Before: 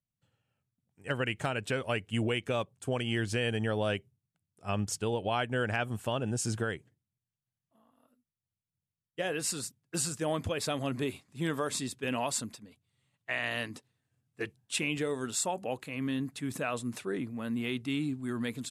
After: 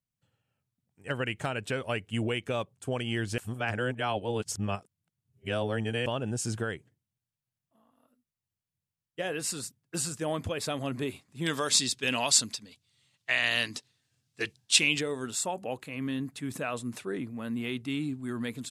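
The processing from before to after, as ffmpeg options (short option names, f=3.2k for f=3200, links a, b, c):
-filter_complex "[0:a]asettb=1/sr,asplit=3[a][b][c];[a]atrim=end=11.464[d];[b]atrim=start=11.46:end=15.01,asetpts=PTS-STARTPTS,afade=t=in:d=0.004:c=qsin,afade=t=out:st=3.546:d=0.004:c=qsin,equalizer=f=4.9k:w=0.58:g=15[e];[c]atrim=start=15.006[f];[d][e]acrossfade=d=0.004:c1=hsin:c2=qsin[g];[g][f]acrossfade=d=0.004:c1=qsin:c2=hsin,asplit=3[h][i][j];[h]atrim=end=3.382[k];[i]atrim=start=3.378:end=6.062,asetpts=PTS-STARTPTS,areverse[l];[j]atrim=start=6.058[m];[k][l]acrossfade=d=0.004:c1=hsin:c2=hsin[n];[n][m]acrossfade=d=0.004:c1=hsin:c2=hsin"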